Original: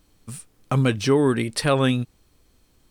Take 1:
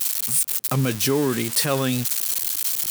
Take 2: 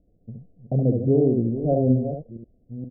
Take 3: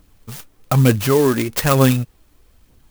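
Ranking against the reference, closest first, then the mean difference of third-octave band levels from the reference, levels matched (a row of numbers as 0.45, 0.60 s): 3, 1, 2; 6.0, 9.0, 14.0 dB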